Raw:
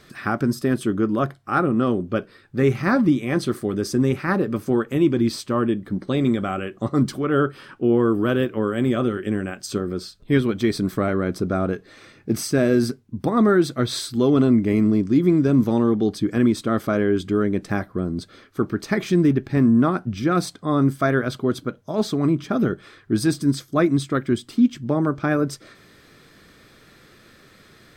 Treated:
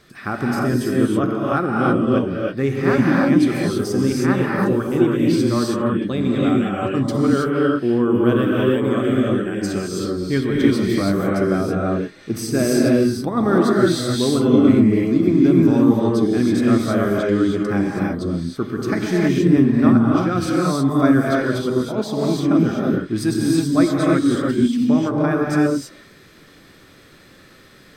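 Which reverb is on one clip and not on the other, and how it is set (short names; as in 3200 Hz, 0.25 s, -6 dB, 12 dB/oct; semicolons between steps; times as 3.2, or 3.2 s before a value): non-linear reverb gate 0.35 s rising, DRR -3.5 dB; gain -2 dB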